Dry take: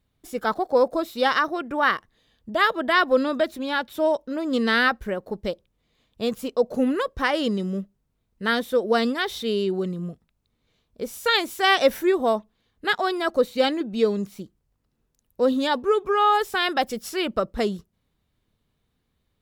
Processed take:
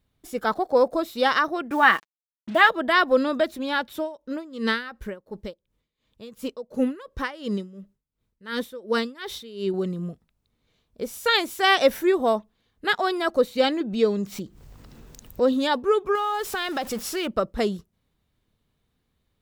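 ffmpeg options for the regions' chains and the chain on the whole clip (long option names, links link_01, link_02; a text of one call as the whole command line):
ffmpeg -i in.wav -filter_complex "[0:a]asettb=1/sr,asplit=3[link_01][link_02][link_03];[link_01]atrim=end=1.714[link_04];[link_02]atrim=start=1.71:end=2.69,asetpts=PTS-STARTPTS,afade=type=in:duration=0.004:curve=qsin,afade=type=out:start_time=0.976:duration=0.004:curve=qsin,highpass=170,equalizer=frequency=240:width_type=q:width=4:gain=9,equalizer=frequency=510:width_type=q:width=4:gain=-4,equalizer=frequency=820:width_type=q:width=4:gain=7,equalizer=frequency=1800:width_type=q:width=4:gain=5,equalizer=frequency=2600:width_type=q:width=4:gain=6,equalizer=frequency=5000:width_type=q:width=4:gain=-7,lowpass=frequency=8600:width=0.5412,lowpass=frequency=8600:width=1.3066,acrusher=bits=6:mix=0:aa=0.5,aecho=1:1:6.1:0.38,atrim=end_sample=43218[link_05];[link_03]atrim=start=2.686[link_06];[link_04][link_05]acrossfade=duration=0.004:curve1=hsin:curve2=qsin[link_07];[link_07][link_06]acrossfade=duration=0.004:curve1=qsin:curve2=hsin,asettb=1/sr,asplit=3[link_08][link_09][link_10];[link_08]atrim=end=3.974[link_11];[link_09]atrim=start=3.97:end=9.74,asetpts=PTS-STARTPTS,afade=type=in:duration=0.004:curve=qsin,afade=type=out:start_time=5.766:duration=0.004:curve=qsin,bandreject=frequency=710:width=6.5,aeval=exprs='val(0)*pow(10,-18*(0.5-0.5*cos(2*PI*2.8*n/s))/20)':channel_layout=same[link_12];[link_10]atrim=start=9.736[link_13];[link_11][link_12]acrossfade=duration=0.004:curve1=hsin:curve2=qsin[link_14];[link_14][link_13]acrossfade=duration=0.004:curve1=qsin:curve2=hsin,asettb=1/sr,asplit=3[link_15][link_16][link_17];[link_15]atrim=end=13.594[link_18];[link_16]atrim=start=13.59:end=15.53,asetpts=PTS-STARTPTS,afade=type=in:duration=0.004:curve=qsin,afade=type=out:start_time=1.936:duration=0.004:curve=qsin,equalizer=frequency=11000:width_type=o:width=0.22:gain=-12.5,acompressor=mode=upward:threshold=-24dB:ratio=2.5:attack=3.2:release=140:knee=2.83:detection=peak[link_19];[link_17]atrim=start=15.526[link_20];[link_18][link_19]acrossfade=duration=0.004:curve1=hsin:curve2=qsin[link_21];[link_21][link_20]acrossfade=duration=0.004:curve1=qsin:curve2=hsin,asettb=1/sr,asplit=3[link_22][link_23][link_24];[link_22]atrim=end=16.154[link_25];[link_23]atrim=start=16.15:end=17.27,asetpts=PTS-STARTPTS,afade=type=in:duration=0.004:curve=qsin,afade=type=out:start_time=1.116:duration=0.004:curve=qsin,aeval=exprs='val(0)+0.5*0.02*sgn(val(0))':channel_layout=same,acompressor=threshold=-23dB:ratio=4:attack=3.2:release=140:knee=1:detection=peak,acrusher=bits=8:mix=0:aa=0.5[link_26];[link_24]atrim=start=17.266[link_27];[link_25][link_26]acrossfade=duration=0.004:curve1=hsin:curve2=qsin[link_28];[link_28][link_27]acrossfade=duration=0.004:curve1=qsin:curve2=hsin" out.wav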